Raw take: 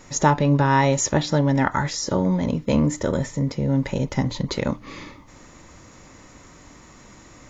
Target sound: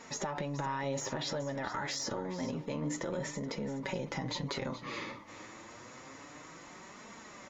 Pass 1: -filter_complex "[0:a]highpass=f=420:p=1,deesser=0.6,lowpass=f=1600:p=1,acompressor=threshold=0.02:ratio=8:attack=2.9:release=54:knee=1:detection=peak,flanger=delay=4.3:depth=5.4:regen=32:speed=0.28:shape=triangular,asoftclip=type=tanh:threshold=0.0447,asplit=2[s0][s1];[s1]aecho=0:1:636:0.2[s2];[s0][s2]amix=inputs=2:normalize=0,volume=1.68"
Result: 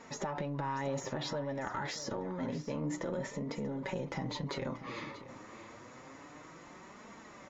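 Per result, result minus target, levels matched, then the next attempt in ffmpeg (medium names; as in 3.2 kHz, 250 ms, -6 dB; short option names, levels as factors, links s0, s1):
echo 211 ms late; saturation: distortion +9 dB; 4 kHz band -3.0 dB
-filter_complex "[0:a]highpass=f=420:p=1,deesser=0.6,lowpass=f=1600:p=1,acompressor=threshold=0.02:ratio=8:attack=2.9:release=54:knee=1:detection=peak,flanger=delay=4.3:depth=5.4:regen=32:speed=0.28:shape=triangular,asoftclip=type=tanh:threshold=0.0447,asplit=2[s0][s1];[s1]aecho=0:1:425:0.2[s2];[s0][s2]amix=inputs=2:normalize=0,volume=1.68"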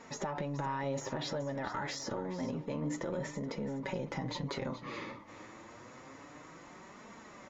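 saturation: distortion +9 dB; 4 kHz band -3.0 dB
-filter_complex "[0:a]highpass=f=420:p=1,deesser=0.6,lowpass=f=1600:p=1,acompressor=threshold=0.02:ratio=8:attack=2.9:release=54:knee=1:detection=peak,flanger=delay=4.3:depth=5.4:regen=32:speed=0.28:shape=triangular,asoftclip=type=tanh:threshold=0.0891,asplit=2[s0][s1];[s1]aecho=0:1:425:0.2[s2];[s0][s2]amix=inputs=2:normalize=0,volume=1.68"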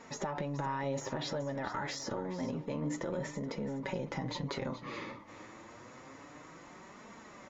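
4 kHz band -3.0 dB
-filter_complex "[0:a]highpass=f=420:p=1,deesser=0.6,lowpass=f=4000:p=1,acompressor=threshold=0.02:ratio=8:attack=2.9:release=54:knee=1:detection=peak,flanger=delay=4.3:depth=5.4:regen=32:speed=0.28:shape=triangular,asoftclip=type=tanh:threshold=0.0891,asplit=2[s0][s1];[s1]aecho=0:1:425:0.2[s2];[s0][s2]amix=inputs=2:normalize=0,volume=1.68"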